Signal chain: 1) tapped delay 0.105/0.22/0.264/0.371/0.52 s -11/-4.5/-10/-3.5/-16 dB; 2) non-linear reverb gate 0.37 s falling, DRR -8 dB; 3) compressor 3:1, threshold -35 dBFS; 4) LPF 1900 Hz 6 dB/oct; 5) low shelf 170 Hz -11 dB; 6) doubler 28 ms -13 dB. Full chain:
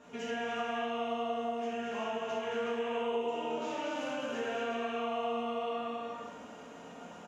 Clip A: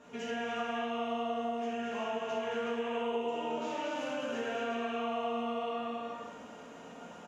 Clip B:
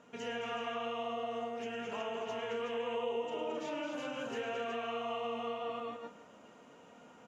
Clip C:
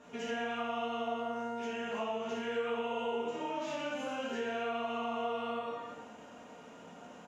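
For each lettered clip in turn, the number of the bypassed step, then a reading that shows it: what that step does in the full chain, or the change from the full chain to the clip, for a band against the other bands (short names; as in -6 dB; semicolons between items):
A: 6, 250 Hz band +1.5 dB; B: 2, momentary loudness spread change +9 LU; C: 1, momentary loudness spread change +5 LU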